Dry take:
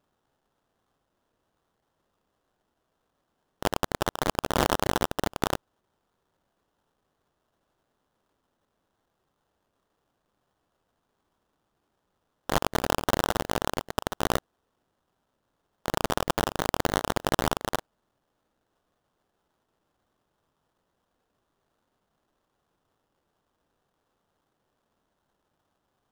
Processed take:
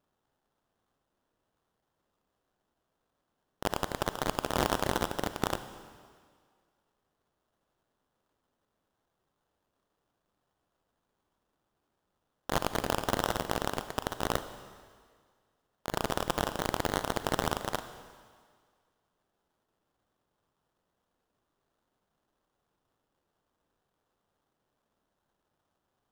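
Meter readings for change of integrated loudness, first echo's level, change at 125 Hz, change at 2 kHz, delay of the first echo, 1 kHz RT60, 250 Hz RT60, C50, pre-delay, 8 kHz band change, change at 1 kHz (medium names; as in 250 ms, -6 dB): -4.0 dB, no echo, -4.0 dB, -4.0 dB, no echo, 1.9 s, 1.7 s, 11.5 dB, 34 ms, -4.0 dB, -4.0 dB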